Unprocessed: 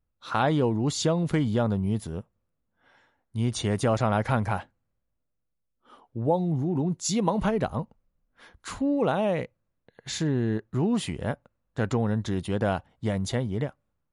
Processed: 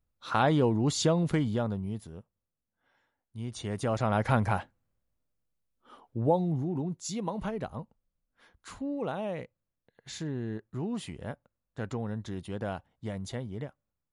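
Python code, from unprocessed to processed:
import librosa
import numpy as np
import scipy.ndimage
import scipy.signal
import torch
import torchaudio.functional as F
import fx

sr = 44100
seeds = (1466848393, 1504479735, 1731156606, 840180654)

y = fx.gain(x, sr, db=fx.line((1.2, -1.0), (2.13, -11.0), (3.48, -11.0), (4.32, -0.5), (6.24, -0.5), (7.1, -9.0)))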